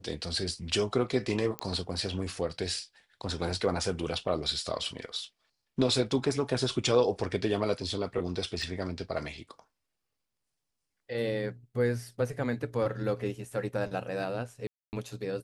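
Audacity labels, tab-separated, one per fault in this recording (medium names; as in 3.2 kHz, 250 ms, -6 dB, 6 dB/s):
1.590000	1.590000	pop -17 dBFS
8.620000	8.620000	dropout 2.5 ms
14.670000	14.930000	dropout 259 ms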